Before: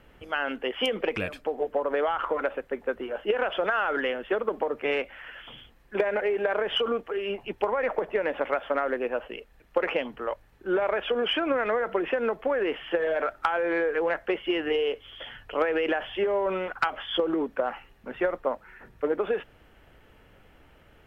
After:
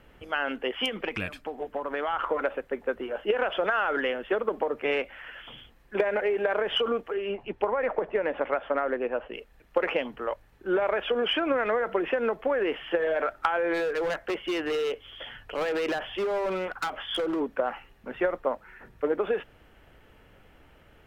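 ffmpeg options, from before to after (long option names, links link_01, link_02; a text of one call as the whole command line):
ffmpeg -i in.wav -filter_complex "[0:a]asettb=1/sr,asplit=3[link_01][link_02][link_03];[link_01]atrim=end=0.764[link_04];[link_02]atrim=start=0.76:end=2.13,asetpts=PTS-STARTPTS,afade=type=in:duration=0.004:curve=qsin,afade=type=out:start_time=1.366:duration=0.004:curve=qsin,equalizer=frequency=500:width=1.5:gain=-8[link_05];[link_03]atrim=start=2.126[link_06];[link_04][link_05]acrossfade=duration=0.004:curve1=hsin:curve2=qsin[link_07];[link_07][link_06]acrossfade=duration=0.004:curve1=qsin:curve2=hsin,asettb=1/sr,asplit=3[link_08][link_09][link_10];[link_08]atrim=end=7.144[link_11];[link_09]atrim=start=7.14:end=9.34,asetpts=PTS-STARTPTS,afade=type=in:duration=0.004:curve=qsin,afade=type=out:start_time=2.196:duration=0.004:curve=qsin,lowpass=frequency=2400:poles=1[link_12];[link_10]atrim=start=9.336[link_13];[link_11][link_12]acrossfade=duration=0.004:curve1=hsin:curve2=qsin[link_14];[link_14][link_13]acrossfade=duration=0.004:curve1=qsin:curve2=hsin,asplit=3[link_15][link_16][link_17];[link_15]afade=type=out:start_time=13.73:duration=0.02[link_18];[link_16]asoftclip=type=hard:threshold=-25dB,afade=type=in:start_time=13.73:duration=0.02,afade=type=out:start_time=17.39:duration=0.02[link_19];[link_17]afade=type=in:start_time=17.39:duration=0.02[link_20];[link_18][link_19][link_20]amix=inputs=3:normalize=0" out.wav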